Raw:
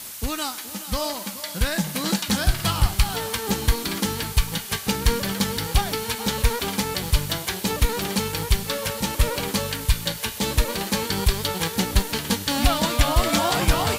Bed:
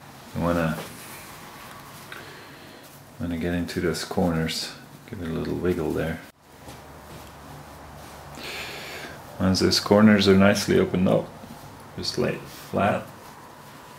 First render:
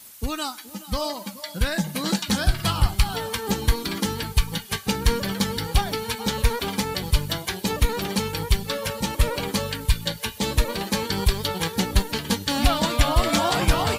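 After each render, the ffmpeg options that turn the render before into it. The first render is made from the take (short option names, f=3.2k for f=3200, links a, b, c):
-af "afftdn=nr=11:nf=-35"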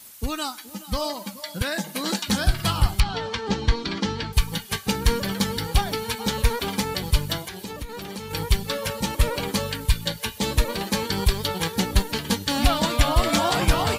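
-filter_complex "[0:a]asettb=1/sr,asplit=3[a][b][c];[a]atrim=end=1.624[d];[b]atrim=start=1.62:end=2.27,asetpts=PTS-STARTPTS,afade=t=in:d=0.004:c=qsin,afade=t=out:st=0.646:d=0.004:c=qsin,highpass=f=220:w=0.5412,highpass=f=220:w=1.3066[e];[c]atrim=start=2.266[f];[d][e]acrossfade=d=0.004:c1=hsin:c2=qsin[g];[g][f]acrossfade=d=0.004:c1=qsin:c2=hsin,asettb=1/sr,asplit=3[h][i][j];[h]atrim=end=3.004[k];[i]atrim=start=3:end=4.33,asetpts=PTS-STARTPTS,afade=t=in:d=0.004:c=qsin,afade=t=out:st=1.326:d=0.004:c=qsin,lowpass=f=5.6k:w=0.5412,lowpass=f=5.6k:w=1.3066[l];[j]atrim=start=4.326[m];[k][l]acrossfade=d=0.004:c1=hsin:c2=qsin[n];[n][m]acrossfade=d=0.004:c1=qsin:c2=hsin,asettb=1/sr,asplit=3[o][p][q];[o]atrim=end=7.444[r];[p]atrim=start=7.44:end=8.31,asetpts=PTS-STARTPTS,afade=t=in:d=0.004:c=qsin,afade=t=out:st=0.866:d=0.004:c=qsin,acompressor=threshold=-32dB:ratio=4:attack=3.2:release=140:knee=1:detection=peak[s];[q]atrim=start=8.306[t];[r][s]acrossfade=d=0.004:c1=hsin:c2=qsin[u];[u][t]acrossfade=d=0.004:c1=qsin:c2=hsin"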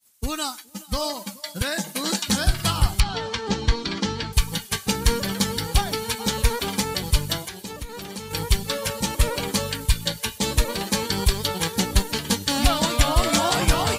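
-af "agate=range=-33dB:threshold=-33dB:ratio=3:detection=peak,equalizer=f=7.8k:t=o:w=1.3:g=5.5"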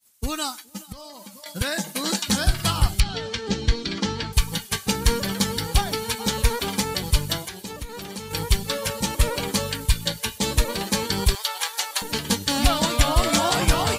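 -filter_complex "[0:a]asettb=1/sr,asplit=3[a][b][c];[a]atrim=end=0.924[d];[b]atrim=start=0.92:end=1.46,asetpts=PTS-STARTPTS,afade=t=in:d=0.004:c=qsin,afade=t=out:st=0.536:d=0.004:c=qsin,acompressor=threshold=-37dB:ratio=12:attack=3.2:release=140:knee=1:detection=peak[e];[c]atrim=start=1.456[f];[d][e]acrossfade=d=0.004:c1=hsin:c2=qsin[g];[g][f]acrossfade=d=0.004:c1=qsin:c2=hsin,asettb=1/sr,asplit=3[h][i][j];[h]atrim=end=2.884[k];[i]atrim=start=2.88:end=3.98,asetpts=PTS-STARTPTS,afade=t=in:d=0.004:c=qsin,afade=t=out:st=1.096:d=0.004:c=qsin,equalizer=f=1k:w=1.9:g=-9.5[l];[j]atrim=start=3.976[m];[k][l]acrossfade=d=0.004:c1=hsin:c2=qsin[n];[n][m]acrossfade=d=0.004:c1=qsin:c2=hsin,asettb=1/sr,asplit=3[o][p][q];[o]atrim=end=11.354[r];[p]atrim=start=11.35:end=12.02,asetpts=PTS-STARTPTS,afade=t=in:d=0.004:c=qsin,afade=t=out:st=0.666:d=0.004:c=qsin,highpass=f=710:w=0.5412,highpass=f=710:w=1.3066[s];[q]atrim=start=12.016[t];[r][s]acrossfade=d=0.004:c1=hsin:c2=qsin[u];[u][t]acrossfade=d=0.004:c1=qsin:c2=hsin"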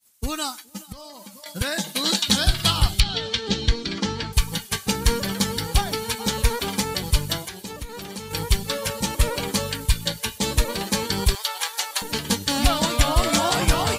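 -filter_complex "[0:a]asettb=1/sr,asplit=3[a][b][c];[a]atrim=end=1.784[d];[b]atrim=start=1.78:end=3.69,asetpts=PTS-STARTPTS,afade=t=in:d=0.004:c=qsin,afade=t=out:st=1.906:d=0.004:c=qsin,equalizer=f=3.6k:t=o:w=0.74:g=8.5[e];[c]atrim=start=3.686[f];[d][e]acrossfade=d=0.004:c1=hsin:c2=qsin[g];[g][f]acrossfade=d=0.004:c1=qsin:c2=hsin"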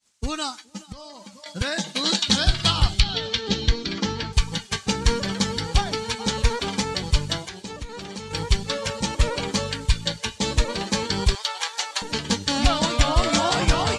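-af "lowpass=f=7.4k:w=0.5412,lowpass=f=7.4k:w=1.3066"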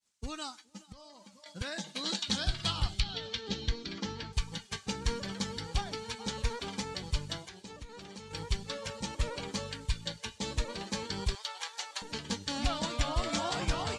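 -af "volume=-12dB"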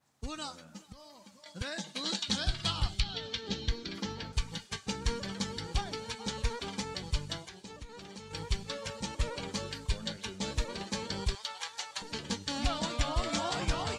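-filter_complex "[1:a]volume=-30.5dB[a];[0:a][a]amix=inputs=2:normalize=0"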